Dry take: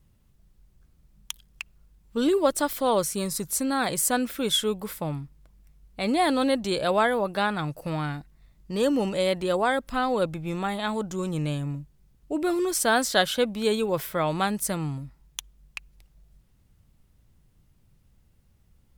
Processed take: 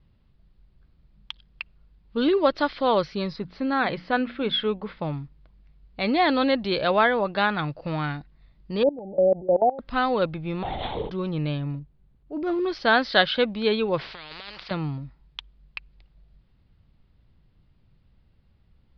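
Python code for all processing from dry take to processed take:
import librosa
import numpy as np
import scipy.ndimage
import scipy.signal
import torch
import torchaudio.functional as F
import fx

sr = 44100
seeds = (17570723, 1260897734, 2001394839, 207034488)

y = fx.chain(x, sr, fx.lowpass(hz=3000.0, slope=12),
    fx.hum_notches(base_hz=60, count=5), at=(3.36, 4.99))
y = fx.chain(y, sr, fx.brickwall_bandstop(low_hz=890.0, high_hz=11000.0),
    fx.peak_eq(hz=630.0, db=7.5, octaves=1.1),
    fx.level_steps(step_db=19), at=(8.83, 9.79))
y = fx.chain(y, sr, fx.fixed_phaser(hz=580.0, stages=4),
    fx.room_flutter(wall_m=9.0, rt60_s=0.73),
    fx.lpc_vocoder(seeds[0], excitation='whisper', order=10), at=(10.63, 11.1))
y = fx.chain(y, sr, fx.high_shelf(hz=2100.0, db=-11.5),
    fx.transient(attack_db=-8, sustain_db=-1),
    fx.resample_bad(factor=6, down='none', up='hold'), at=(11.79, 12.66))
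y = fx.chain(y, sr, fx.peak_eq(hz=260.0, db=-13.0, octaves=0.69),
    fx.over_compress(threshold_db=-30.0, ratio=-1.0),
    fx.spectral_comp(ratio=10.0), at=(14.01, 14.71))
y = scipy.signal.sosfilt(scipy.signal.butter(12, 4800.0, 'lowpass', fs=sr, output='sos'), y)
y = fx.dynamic_eq(y, sr, hz=2000.0, q=0.89, threshold_db=-37.0, ratio=4.0, max_db=4)
y = y * librosa.db_to_amplitude(1.0)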